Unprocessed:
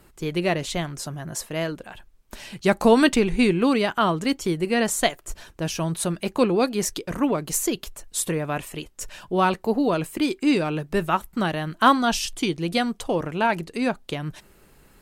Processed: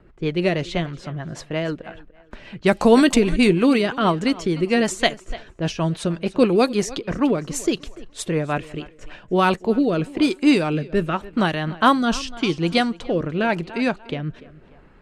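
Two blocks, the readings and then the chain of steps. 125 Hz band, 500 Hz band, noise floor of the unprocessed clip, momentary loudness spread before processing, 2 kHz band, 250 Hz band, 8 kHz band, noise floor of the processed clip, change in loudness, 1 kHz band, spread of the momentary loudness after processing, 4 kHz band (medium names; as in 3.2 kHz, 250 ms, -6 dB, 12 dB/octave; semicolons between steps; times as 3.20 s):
+3.5 dB, +3.0 dB, -55 dBFS, 13 LU, +2.0 dB, +3.5 dB, -4.0 dB, -50 dBFS, +2.5 dB, +0.5 dB, 13 LU, +2.0 dB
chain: thinning echo 293 ms, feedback 33%, high-pass 190 Hz, level -18 dB; rotary cabinet horn 6.3 Hz, later 0.9 Hz, at 8.64 s; level-controlled noise filter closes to 1.9 kHz, open at -17 dBFS; trim +5 dB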